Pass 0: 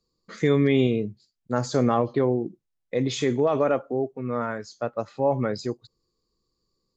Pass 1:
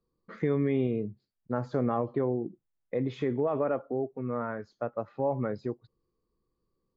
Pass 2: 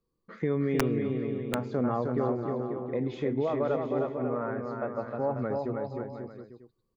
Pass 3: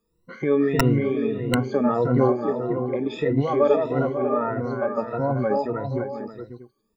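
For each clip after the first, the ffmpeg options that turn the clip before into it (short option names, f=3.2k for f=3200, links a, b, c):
-af "lowpass=1.7k,acompressor=threshold=-31dB:ratio=1.5,volume=-1.5dB"
-af "aecho=1:1:310|542.5|716.9|847.7|945.7:0.631|0.398|0.251|0.158|0.1,aeval=exprs='(mod(5.62*val(0)+1,2)-1)/5.62':c=same,volume=-1dB"
-af "afftfilt=real='re*pow(10,23/40*sin(2*PI*(2*log(max(b,1)*sr/1024/100)/log(2)-(1.6)*(pts-256)/sr)))':imag='im*pow(10,23/40*sin(2*PI*(2*log(max(b,1)*sr/1024/100)/log(2)-(1.6)*(pts-256)/sr)))':win_size=1024:overlap=0.75,volume=3dB"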